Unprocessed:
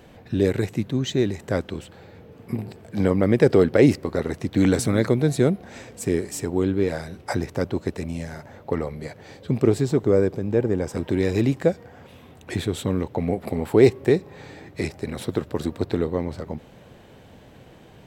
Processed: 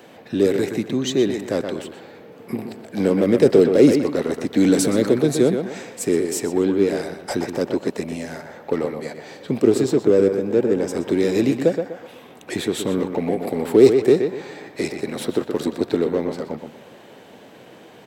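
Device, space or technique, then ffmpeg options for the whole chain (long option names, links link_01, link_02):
one-band saturation: -filter_complex "[0:a]highpass=250,asplit=2[link_01][link_02];[link_02]adelay=123,lowpass=frequency=3600:poles=1,volume=-8dB,asplit=2[link_03][link_04];[link_04]adelay=123,lowpass=frequency=3600:poles=1,volume=0.32,asplit=2[link_05][link_06];[link_06]adelay=123,lowpass=frequency=3600:poles=1,volume=0.32,asplit=2[link_07][link_08];[link_08]adelay=123,lowpass=frequency=3600:poles=1,volume=0.32[link_09];[link_01][link_03][link_05][link_07][link_09]amix=inputs=5:normalize=0,acrossover=split=560|3500[link_10][link_11][link_12];[link_11]asoftclip=type=tanh:threshold=-35dB[link_13];[link_10][link_13][link_12]amix=inputs=3:normalize=0,volume=5.5dB"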